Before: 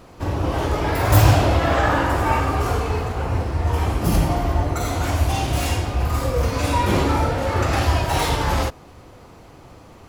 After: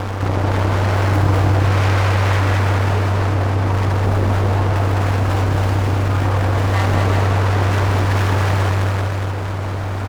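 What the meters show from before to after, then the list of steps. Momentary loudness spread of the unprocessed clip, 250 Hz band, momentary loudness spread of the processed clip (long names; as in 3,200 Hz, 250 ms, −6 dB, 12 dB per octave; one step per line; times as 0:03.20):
6 LU, +1.0 dB, 4 LU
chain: running median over 15 samples
high-pass filter 89 Hz 12 dB per octave
high-shelf EQ 7,900 Hz −6.5 dB
notch filter 750 Hz, Q 12
comb filter 7.5 ms, depth 30%
upward compression, threshold −39 dBFS
full-wave rectification
ring modulation 97 Hz
multi-tap delay 209/384/620 ms −3/−8/−15.5 dB
envelope flattener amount 70%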